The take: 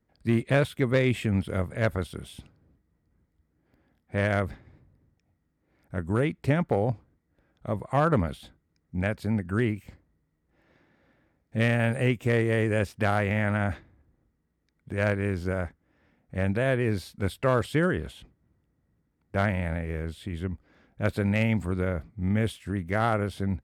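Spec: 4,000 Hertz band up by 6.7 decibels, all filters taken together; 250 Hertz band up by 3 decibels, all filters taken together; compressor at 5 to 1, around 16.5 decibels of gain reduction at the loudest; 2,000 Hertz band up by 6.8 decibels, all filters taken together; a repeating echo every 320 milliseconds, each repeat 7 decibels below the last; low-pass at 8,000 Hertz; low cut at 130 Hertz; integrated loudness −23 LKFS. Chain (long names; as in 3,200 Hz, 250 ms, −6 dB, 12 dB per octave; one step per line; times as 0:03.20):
high-pass filter 130 Hz
low-pass filter 8,000 Hz
parametric band 250 Hz +4.5 dB
parametric band 2,000 Hz +7 dB
parametric band 4,000 Hz +6 dB
downward compressor 5 to 1, threshold −35 dBFS
repeating echo 320 ms, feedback 45%, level −7 dB
level +16 dB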